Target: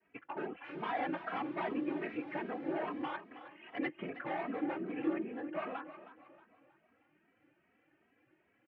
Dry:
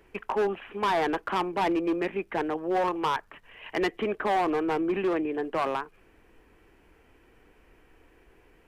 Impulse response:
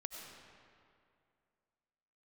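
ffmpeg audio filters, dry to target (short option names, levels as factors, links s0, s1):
-filter_complex "[0:a]asettb=1/sr,asplit=3[s0][s1][s2];[s0]atrim=end=0.644[s3];[s1]atrim=start=0.64:end=3.03,asetpts=PTS-STARTPTS,afade=t=in:d=0.004:c=qsin,afade=t=out:st=2.386:d=0.004:c=qsin,aeval=exprs='val(0)+0.5*0.0188*sgn(val(0))':c=same[s4];[s2]atrim=start=3.026[s5];[s3][s4]acrossfade=d=0.004:c1=hsin:c2=qsin[s6];[s6][s5]acrossfade=d=0.004:c1=qsin:c2=hsin,agate=range=0.0224:threshold=0.00141:ratio=3:detection=peak,lowshelf=f=230:g=-8,afftfilt=real='hypot(re,im)*cos(2*PI*random(0))':imag='hypot(re,im)*sin(2*PI*random(1))':win_size=512:overlap=0.75,highpass=150,equalizer=f=160:t=q:w=4:g=4,equalizer=f=300:t=q:w=4:g=7,equalizer=f=430:t=q:w=4:g=-9,equalizer=f=1000:t=q:w=4:g=-7,lowpass=f=2700:w=0.5412,lowpass=f=2700:w=1.3066,aecho=1:1:316|632|948|1264:0.224|0.0918|0.0376|0.0154,asplit=2[s7][s8];[s8]adelay=2.8,afreqshift=2.5[s9];[s7][s9]amix=inputs=2:normalize=1"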